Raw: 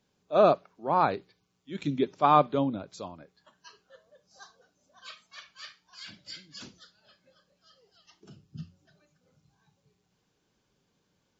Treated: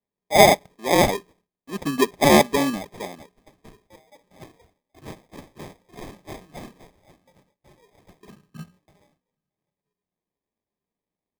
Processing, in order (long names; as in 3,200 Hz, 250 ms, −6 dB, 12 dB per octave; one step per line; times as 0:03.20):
high-pass filter 190 Hz 12 dB per octave
noise gate with hold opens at −57 dBFS
comb filter 4.7 ms, depth 30%
decimation without filtering 31×
level +6.5 dB